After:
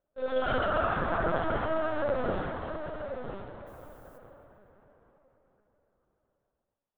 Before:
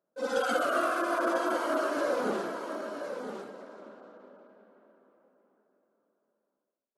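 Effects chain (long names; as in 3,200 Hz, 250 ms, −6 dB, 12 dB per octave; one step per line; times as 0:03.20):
linear-prediction vocoder at 8 kHz pitch kept
0:03.66–0:04.17: background noise violet −66 dBFS
echo with shifted repeats 135 ms, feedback 64%, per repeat +110 Hz, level −15 dB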